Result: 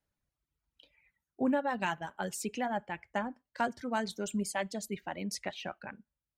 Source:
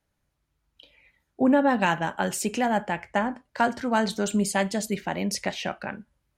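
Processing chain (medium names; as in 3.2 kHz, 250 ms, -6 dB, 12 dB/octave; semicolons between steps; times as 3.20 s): reverb removal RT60 1.6 s; trim -8.5 dB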